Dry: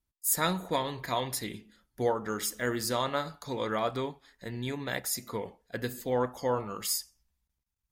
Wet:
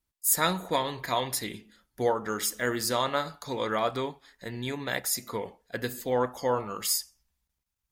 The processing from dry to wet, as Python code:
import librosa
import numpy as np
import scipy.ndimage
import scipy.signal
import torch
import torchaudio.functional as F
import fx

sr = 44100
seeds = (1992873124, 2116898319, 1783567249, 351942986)

y = fx.low_shelf(x, sr, hz=330.0, db=-4.5)
y = F.gain(torch.from_numpy(y), 3.5).numpy()